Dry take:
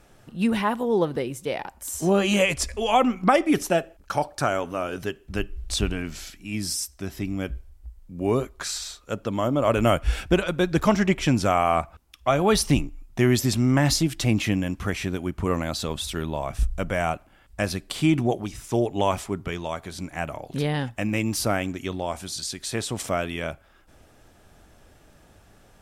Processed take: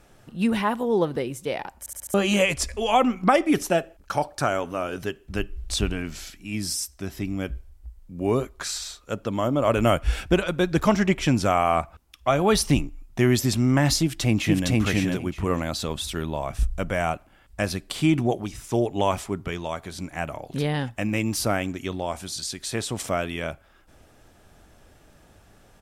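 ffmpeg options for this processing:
ffmpeg -i in.wav -filter_complex "[0:a]asplit=2[link_01][link_02];[link_02]afade=type=in:start_time=14.02:duration=0.01,afade=type=out:start_time=14.7:duration=0.01,aecho=0:1:460|920|1380:0.944061|0.141609|0.0212414[link_03];[link_01][link_03]amix=inputs=2:normalize=0,asplit=6[link_04][link_05][link_06][link_07][link_08][link_09];[link_04]atrim=end=1.862[link_10];[link_05]atrim=start=1.788:end=1.862[link_11];[link_06]atrim=start=1.788:end=1.862[link_12];[link_07]atrim=start=1.788:end=1.862[link_13];[link_08]atrim=start=1.788:end=1.862[link_14];[link_09]atrim=start=2.138[link_15];[link_10][link_11]acrossfade=duration=0.004:curve1=hsin:curve2=hsin[link_16];[link_16][link_12]acrossfade=duration=0.004:curve1=hsin:curve2=hsin[link_17];[link_17][link_13]acrossfade=duration=0.004:curve1=hsin:curve2=hsin[link_18];[link_18][link_14]acrossfade=duration=0.004:curve1=hsin:curve2=hsin[link_19];[link_19][link_15]acrossfade=duration=0.004:curve1=hsin:curve2=hsin" out.wav

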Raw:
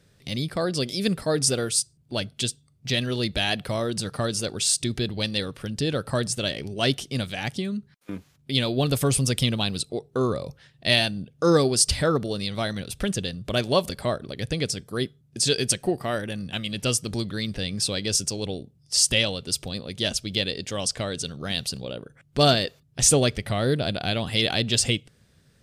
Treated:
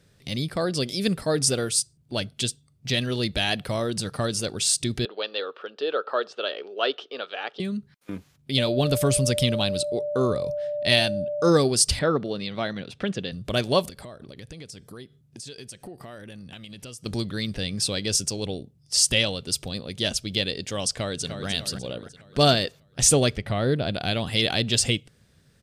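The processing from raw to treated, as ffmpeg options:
ffmpeg -i in.wav -filter_complex "[0:a]asettb=1/sr,asplit=3[link_01][link_02][link_03];[link_01]atrim=end=5.054[link_04];[link_02]atrim=start=5.05:end=7.6,asetpts=PTS-STARTPTS,afade=type=in:duration=0.004:curve=qsin,afade=type=out:start_time=2.546:duration=0.004:curve=qsin,highpass=frequency=410:width=0.5412,highpass=frequency=410:width=1.3066,equalizer=frequency=440:width_type=q:width=4:gain=6,equalizer=frequency=1300:width_type=q:width=4:gain=9,equalizer=frequency=2100:width_type=q:width=4:gain=-9,lowpass=frequency=3500:width=0.5412,lowpass=frequency=3500:width=1.3066[link_05];[link_03]atrim=start=7.596[link_06];[link_04][link_05]acrossfade=duration=0.004:curve1=hsin:curve2=qsin[link_07];[link_07][link_06]acrossfade=duration=0.004:curve1=qsin:curve2=hsin,asettb=1/sr,asplit=3[link_08][link_09][link_10];[link_08]atrim=end=8.584[link_11];[link_09]atrim=start=8.58:end=11.49,asetpts=PTS-STARTPTS,afade=type=in:duration=0.004:curve=qsin,afade=type=out:start_time=2.906:duration=0.004:curve=qsin,aeval=exprs='val(0)+0.0501*sin(2*PI*590*n/s)':channel_layout=same[link_12];[link_10]atrim=start=11.486[link_13];[link_11][link_12]acrossfade=duration=0.004:curve1=hsin:curve2=qsin[link_14];[link_14][link_13]acrossfade=duration=0.004:curve1=qsin:curve2=hsin,asettb=1/sr,asplit=3[link_15][link_16][link_17];[link_15]atrim=end=11.994[link_18];[link_16]atrim=start=11.99:end=13.32,asetpts=PTS-STARTPTS,afade=type=in:duration=0.004:curve=qsin,afade=type=out:start_time=1.326:duration=0.004:curve=qsin,highpass=150,lowpass=3500[link_19];[link_17]atrim=start=13.316[link_20];[link_18][link_19]acrossfade=duration=0.004:curve1=hsin:curve2=qsin[link_21];[link_21][link_20]acrossfade=duration=0.004:curve1=qsin:curve2=hsin,asettb=1/sr,asplit=3[link_22][link_23][link_24];[link_22]atrim=end=13.884[link_25];[link_23]atrim=start=13.88:end=17.06,asetpts=PTS-STARTPTS,afade=type=in:duration=0.004:curve=qsin,afade=type=out:start_time=3.176:duration=0.004:curve=qsin,acompressor=threshold=-38dB:ratio=6:attack=3.2:release=140:knee=1:detection=peak[link_26];[link_24]atrim=start=17.056[link_27];[link_25][link_26]acrossfade=duration=0.004:curve1=hsin:curve2=qsin[link_28];[link_28][link_27]acrossfade=duration=0.004:curve1=qsin:curve2=hsin,asplit=2[link_29][link_30];[link_30]afade=type=in:start_time=20.9:duration=0.01,afade=type=out:start_time=21.48:duration=0.01,aecho=0:1:300|600|900|1200|1500|1800:0.398107|0.199054|0.0995268|0.0497634|0.0248817|0.0124408[link_31];[link_29][link_31]amix=inputs=2:normalize=0,asettb=1/sr,asplit=3[link_32][link_33][link_34];[link_32]atrim=end=23.364[link_35];[link_33]atrim=start=23.36:end=23.94,asetpts=PTS-STARTPTS,afade=type=in:duration=0.004:curve=qsin,afade=type=out:start_time=0.576:duration=0.004:curve=qsin,aemphasis=mode=reproduction:type=50kf[link_36];[link_34]atrim=start=23.936[link_37];[link_35][link_36]acrossfade=duration=0.004:curve1=hsin:curve2=qsin[link_38];[link_38][link_37]acrossfade=duration=0.004:curve1=qsin:curve2=hsin" out.wav

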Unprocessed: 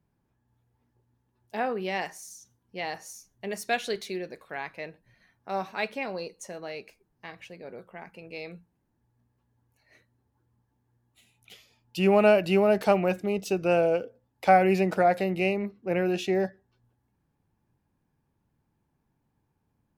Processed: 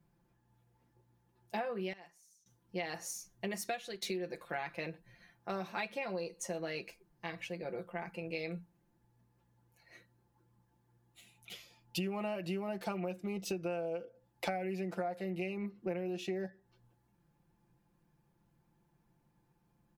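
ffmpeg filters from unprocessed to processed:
ffmpeg -i in.wav -filter_complex "[0:a]asplit=4[link_01][link_02][link_03][link_04];[link_01]atrim=end=1.93,asetpts=PTS-STARTPTS,afade=type=out:start_time=1.55:duration=0.38:curve=log:silence=0.0707946[link_05];[link_02]atrim=start=1.93:end=2.46,asetpts=PTS-STARTPTS,volume=-23dB[link_06];[link_03]atrim=start=2.46:end=4.02,asetpts=PTS-STARTPTS,afade=type=in:duration=0.38:curve=log:silence=0.0707946,afade=type=out:start_time=1.06:duration=0.5:silence=0.11885[link_07];[link_04]atrim=start=4.02,asetpts=PTS-STARTPTS,afade=type=in:duration=0.004:curve=hsin:silence=0.11885[link_08];[link_05][link_06][link_07][link_08]concat=n=4:v=0:a=1,aecho=1:1:5.8:0.76,acompressor=threshold=-34dB:ratio=16" out.wav

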